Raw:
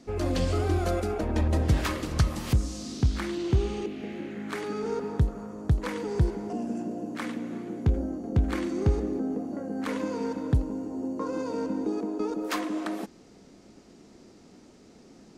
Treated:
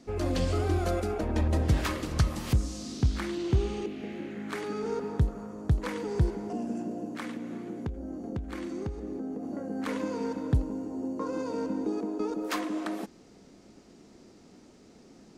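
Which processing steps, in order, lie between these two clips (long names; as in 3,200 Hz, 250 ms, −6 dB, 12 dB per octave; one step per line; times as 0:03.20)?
0:07.06–0:09.43: downward compressor 5 to 1, threshold −31 dBFS, peak gain reduction 12.5 dB
level −1.5 dB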